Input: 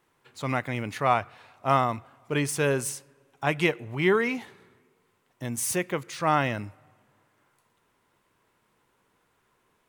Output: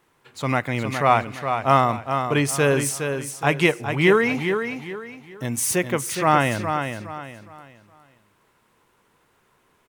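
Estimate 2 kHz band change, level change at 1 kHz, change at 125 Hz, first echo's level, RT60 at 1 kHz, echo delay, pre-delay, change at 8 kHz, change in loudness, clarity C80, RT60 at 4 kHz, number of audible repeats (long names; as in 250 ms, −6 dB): +6.5 dB, +6.5 dB, +6.5 dB, −7.0 dB, no reverb audible, 414 ms, no reverb audible, +6.5 dB, +5.5 dB, no reverb audible, no reverb audible, 3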